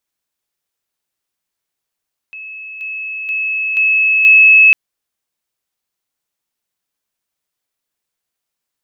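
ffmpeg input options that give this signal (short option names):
-f lavfi -i "aevalsrc='pow(10,(-27.5+6*floor(t/0.48))/20)*sin(2*PI*2590*t)':d=2.4:s=44100"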